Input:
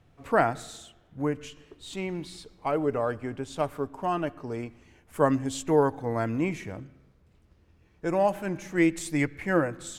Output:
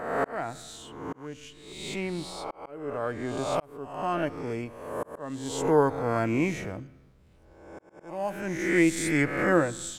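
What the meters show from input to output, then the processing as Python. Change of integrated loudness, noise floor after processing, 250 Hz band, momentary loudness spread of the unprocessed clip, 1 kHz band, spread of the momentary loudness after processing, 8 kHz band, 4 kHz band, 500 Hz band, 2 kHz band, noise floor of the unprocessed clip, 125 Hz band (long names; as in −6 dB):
−0.5 dB, −57 dBFS, 0.0 dB, 17 LU, −1.5 dB, 18 LU, +3.0 dB, +2.5 dB, −1.0 dB, +2.5 dB, −62 dBFS, −1.0 dB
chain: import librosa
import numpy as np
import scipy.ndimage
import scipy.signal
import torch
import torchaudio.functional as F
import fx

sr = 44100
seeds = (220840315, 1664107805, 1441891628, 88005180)

y = fx.spec_swells(x, sr, rise_s=0.99)
y = fx.auto_swell(y, sr, attack_ms=648.0)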